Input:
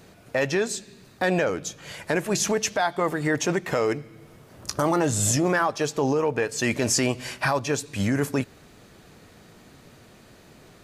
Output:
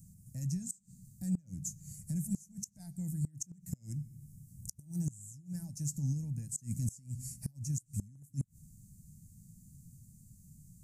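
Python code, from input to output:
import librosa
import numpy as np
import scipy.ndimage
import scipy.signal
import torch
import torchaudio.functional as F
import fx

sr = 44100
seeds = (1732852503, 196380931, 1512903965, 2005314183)

y = scipy.signal.sosfilt(scipy.signal.ellip(3, 1.0, 40, [170.0, 7500.0], 'bandstop', fs=sr, output='sos'), x)
y = fx.gate_flip(y, sr, shuts_db=-24.0, range_db=-25)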